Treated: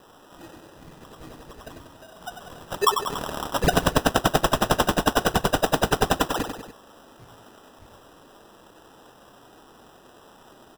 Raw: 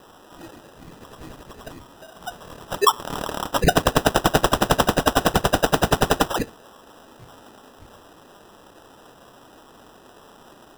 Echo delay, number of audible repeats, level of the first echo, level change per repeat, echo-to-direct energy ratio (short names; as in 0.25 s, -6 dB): 95 ms, 3, -7.5 dB, -4.5 dB, -6.0 dB